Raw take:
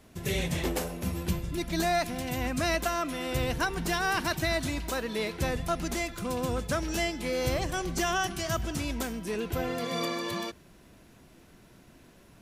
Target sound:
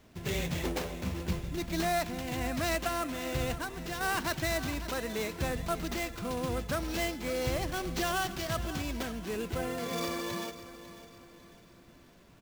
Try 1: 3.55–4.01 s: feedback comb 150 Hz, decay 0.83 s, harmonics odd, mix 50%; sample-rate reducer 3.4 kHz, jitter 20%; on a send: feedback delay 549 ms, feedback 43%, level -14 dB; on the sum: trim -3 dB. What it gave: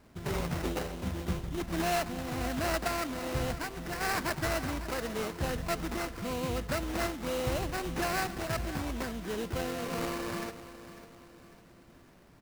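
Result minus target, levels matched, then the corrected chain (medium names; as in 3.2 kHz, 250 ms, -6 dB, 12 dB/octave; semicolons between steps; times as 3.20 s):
sample-rate reducer: distortion +5 dB
3.55–4.01 s: feedback comb 150 Hz, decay 0.83 s, harmonics odd, mix 50%; sample-rate reducer 10 kHz, jitter 20%; on a send: feedback delay 549 ms, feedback 43%, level -14 dB; on the sum: trim -3 dB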